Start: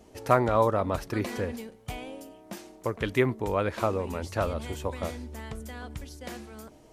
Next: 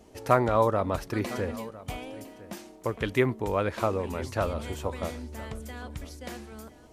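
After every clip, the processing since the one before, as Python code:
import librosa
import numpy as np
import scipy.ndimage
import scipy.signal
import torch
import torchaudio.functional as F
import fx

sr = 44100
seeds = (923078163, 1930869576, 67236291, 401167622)

y = x + 10.0 ** (-18.5 / 20.0) * np.pad(x, (int(1006 * sr / 1000.0), 0))[:len(x)]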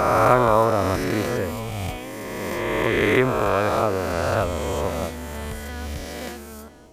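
y = fx.spec_swells(x, sr, rise_s=2.8)
y = y * librosa.db_to_amplitude(2.5)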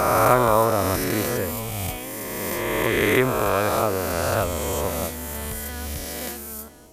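y = fx.peak_eq(x, sr, hz=13000.0, db=15.0, octaves=1.3)
y = y * librosa.db_to_amplitude(-1.0)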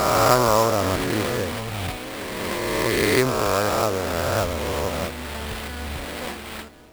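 y = fx.sample_hold(x, sr, seeds[0], rate_hz=6300.0, jitter_pct=20)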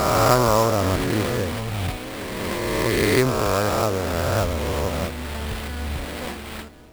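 y = fx.low_shelf(x, sr, hz=240.0, db=6.0)
y = y * librosa.db_to_amplitude(-1.0)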